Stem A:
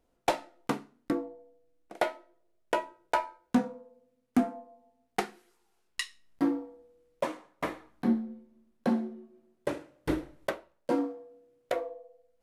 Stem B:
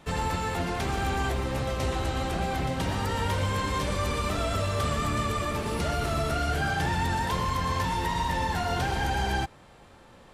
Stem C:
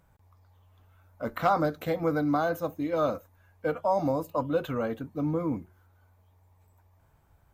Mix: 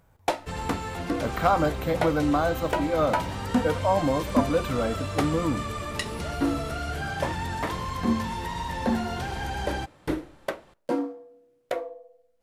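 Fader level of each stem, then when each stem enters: +1.5, −4.0, +2.5 decibels; 0.00, 0.40, 0.00 seconds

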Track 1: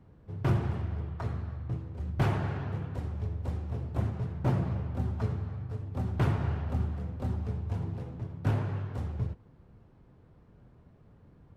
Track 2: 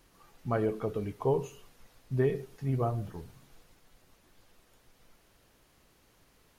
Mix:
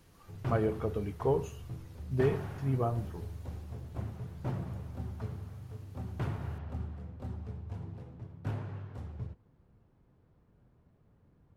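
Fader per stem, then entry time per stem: −8.0, −1.0 decibels; 0.00, 0.00 seconds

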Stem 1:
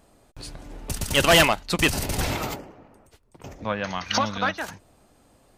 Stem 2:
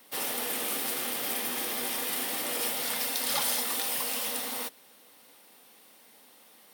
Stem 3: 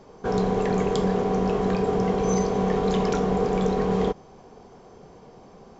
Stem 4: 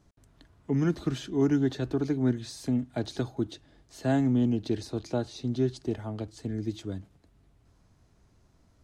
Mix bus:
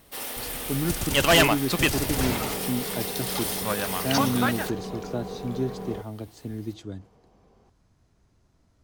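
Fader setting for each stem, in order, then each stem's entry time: −2.0, −2.0, −13.0, −1.5 decibels; 0.00, 0.00, 1.90, 0.00 seconds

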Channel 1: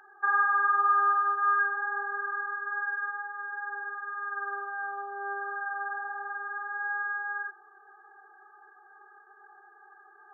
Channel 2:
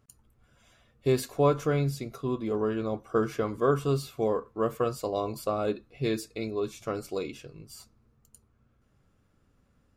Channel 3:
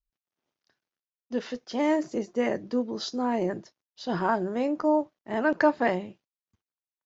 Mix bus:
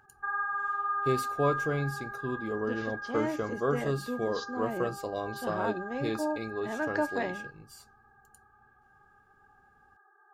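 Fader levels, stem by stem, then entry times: −7.5, −4.5, −8.5 decibels; 0.00, 0.00, 1.35 seconds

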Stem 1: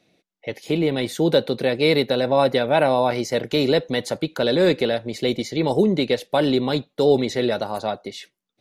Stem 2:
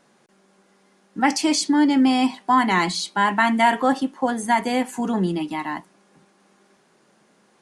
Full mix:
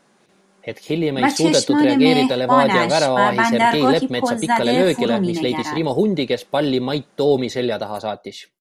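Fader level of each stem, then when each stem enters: +0.5, +1.5 decibels; 0.20, 0.00 seconds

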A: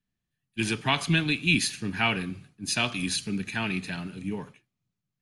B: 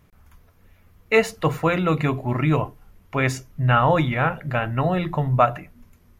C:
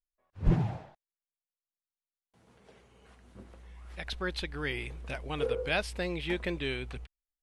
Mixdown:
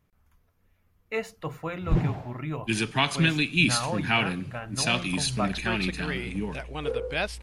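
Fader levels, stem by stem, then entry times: +1.0, −13.0, +1.5 decibels; 2.10, 0.00, 1.45 seconds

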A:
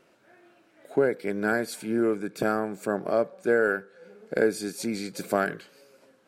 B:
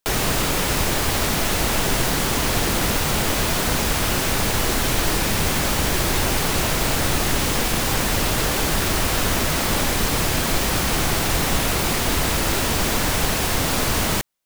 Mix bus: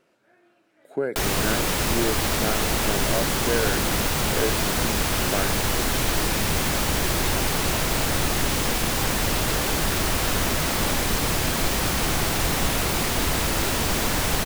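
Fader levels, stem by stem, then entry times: −3.5, −2.5 decibels; 0.00, 1.10 seconds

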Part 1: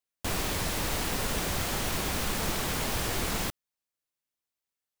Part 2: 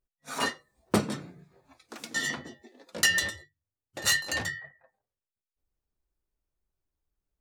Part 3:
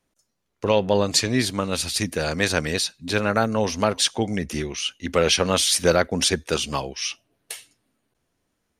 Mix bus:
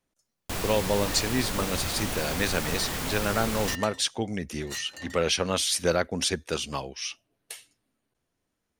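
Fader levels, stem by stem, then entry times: −1.0, −12.5, −6.0 decibels; 0.25, 0.65, 0.00 seconds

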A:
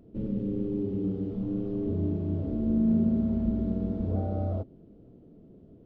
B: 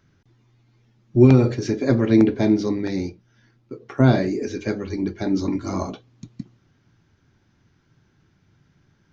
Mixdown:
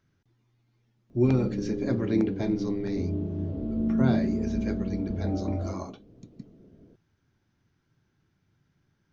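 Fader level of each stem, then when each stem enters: −1.5, −10.0 decibels; 1.10, 0.00 seconds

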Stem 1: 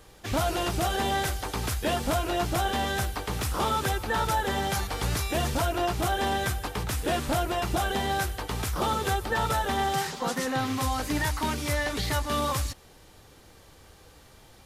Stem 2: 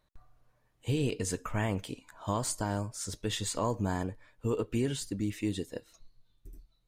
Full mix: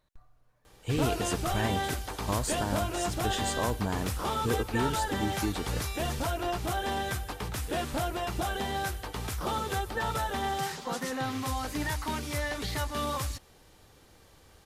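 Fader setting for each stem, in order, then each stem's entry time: −4.5, 0.0 decibels; 0.65, 0.00 seconds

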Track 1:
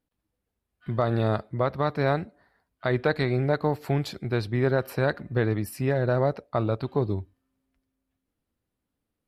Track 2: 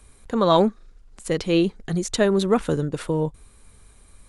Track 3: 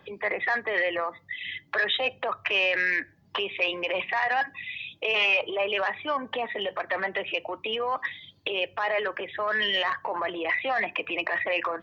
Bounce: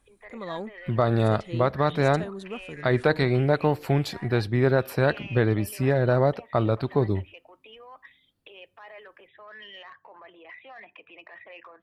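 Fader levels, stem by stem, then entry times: +2.5, −17.5, −19.0 decibels; 0.00, 0.00, 0.00 seconds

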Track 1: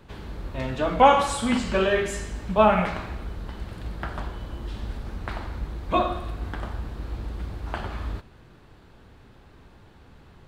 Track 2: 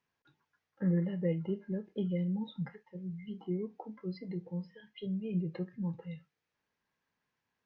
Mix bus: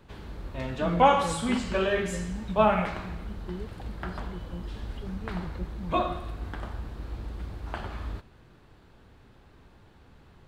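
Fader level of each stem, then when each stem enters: −4.0, −3.0 decibels; 0.00, 0.00 seconds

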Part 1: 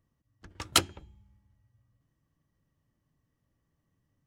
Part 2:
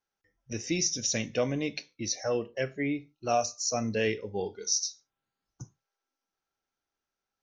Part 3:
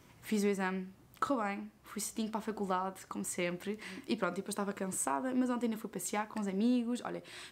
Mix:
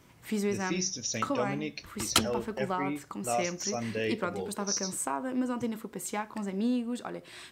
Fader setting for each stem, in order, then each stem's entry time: −1.5, −4.0, +1.5 decibels; 1.40, 0.00, 0.00 seconds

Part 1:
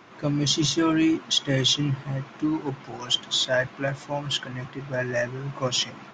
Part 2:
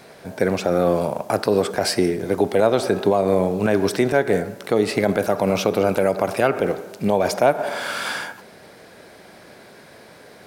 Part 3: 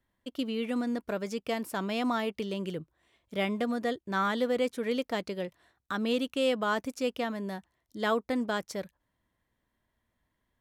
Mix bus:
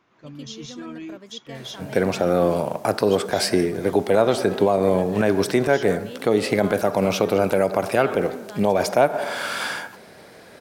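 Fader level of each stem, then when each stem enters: −15.0, −0.5, −9.5 decibels; 0.00, 1.55, 0.00 seconds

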